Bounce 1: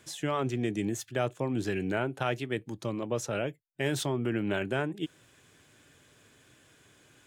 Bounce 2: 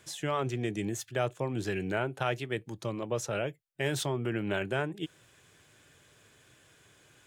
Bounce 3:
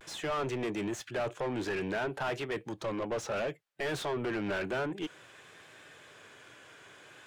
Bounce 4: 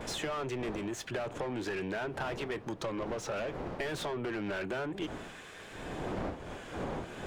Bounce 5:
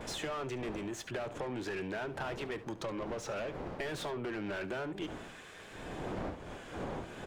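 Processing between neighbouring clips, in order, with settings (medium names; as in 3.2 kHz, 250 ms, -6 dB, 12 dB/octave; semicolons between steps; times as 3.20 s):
peaking EQ 260 Hz -6 dB 0.59 oct
overdrive pedal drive 26 dB, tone 1.7 kHz, clips at -17.5 dBFS; vibrato 0.57 Hz 49 cents; trim -7 dB
wind noise 600 Hz -42 dBFS; compression 10:1, threshold -38 dBFS, peak gain reduction 14 dB; trim +5 dB
delay 71 ms -16.5 dB; trim -2.5 dB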